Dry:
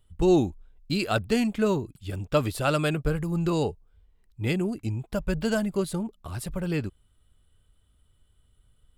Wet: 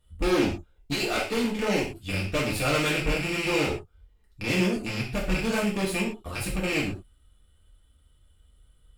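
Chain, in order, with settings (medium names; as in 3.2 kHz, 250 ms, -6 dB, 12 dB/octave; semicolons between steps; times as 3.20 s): rattle on loud lows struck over -29 dBFS, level -18 dBFS; 0.92–1.81 s: high-pass 330 Hz -> 140 Hz 24 dB/octave; valve stage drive 29 dB, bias 0.8; gated-style reverb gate 150 ms falling, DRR -5.5 dB; trim +1.5 dB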